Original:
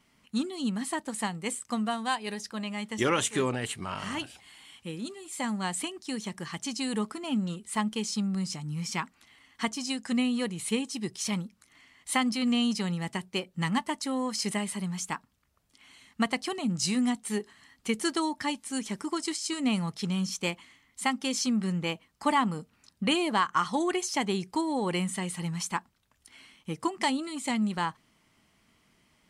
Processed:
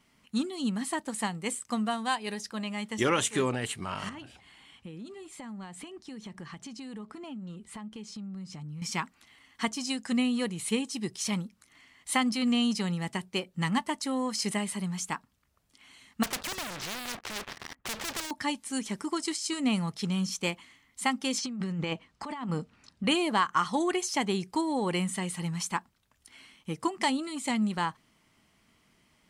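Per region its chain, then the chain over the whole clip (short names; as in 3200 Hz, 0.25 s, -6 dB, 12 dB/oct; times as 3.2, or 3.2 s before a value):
4.09–8.82 LPF 2600 Hz 6 dB/oct + compressor, threshold -41 dBFS + low shelf 190 Hz +5 dB
16.23–18.31 LPF 2100 Hz 24 dB/oct + sample leveller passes 5 + spectral compressor 4:1
21.38–23.04 negative-ratio compressor -33 dBFS + air absorption 67 m
whole clip: dry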